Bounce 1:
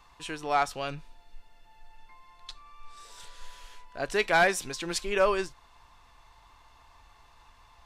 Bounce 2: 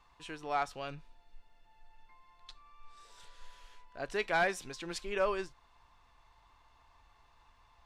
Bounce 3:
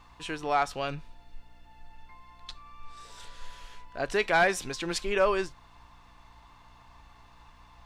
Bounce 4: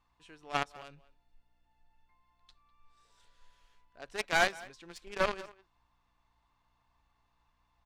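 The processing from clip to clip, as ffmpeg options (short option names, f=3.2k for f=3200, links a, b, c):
-af "highshelf=f=6.7k:g=-8,volume=-7dB"
-filter_complex "[0:a]asplit=2[a][b];[b]alimiter=level_in=5.5dB:limit=-24dB:level=0:latency=1:release=69,volume=-5.5dB,volume=-2dB[c];[a][c]amix=inputs=2:normalize=0,aeval=exprs='val(0)+0.000631*(sin(2*PI*60*n/s)+sin(2*PI*2*60*n/s)/2+sin(2*PI*3*60*n/s)/3+sin(2*PI*4*60*n/s)/4+sin(2*PI*5*60*n/s)/5)':c=same,volume=4dB"
-filter_complex "[0:a]aeval=exprs='0.188*(cos(1*acos(clip(val(0)/0.188,-1,1)))-cos(1*PI/2))+0.0841*(cos(3*acos(clip(val(0)/0.188,-1,1)))-cos(3*PI/2))+0.0168*(cos(5*acos(clip(val(0)/0.188,-1,1)))-cos(5*PI/2))':c=same,asplit=2[a][b];[b]adelay=200,highpass=300,lowpass=3.4k,asoftclip=type=hard:threshold=-22.5dB,volume=-18dB[c];[a][c]amix=inputs=2:normalize=0"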